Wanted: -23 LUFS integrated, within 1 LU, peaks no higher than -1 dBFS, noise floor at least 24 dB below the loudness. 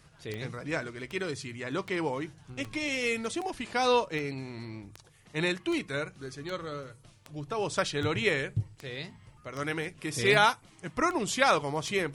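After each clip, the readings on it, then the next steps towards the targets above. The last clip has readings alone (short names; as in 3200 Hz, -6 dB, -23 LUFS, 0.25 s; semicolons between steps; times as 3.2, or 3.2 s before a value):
clicks 16; loudness -30.5 LUFS; peak -9.0 dBFS; loudness target -23.0 LUFS
-> de-click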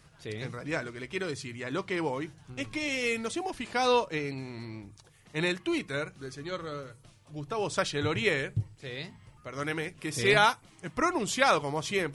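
clicks 0; loudness -30.5 LUFS; peak -9.0 dBFS; loudness target -23.0 LUFS
-> gain +7.5 dB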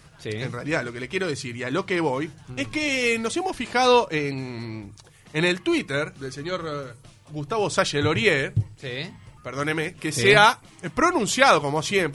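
loudness -23.0 LUFS; peak -1.5 dBFS; noise floor -51 dBFS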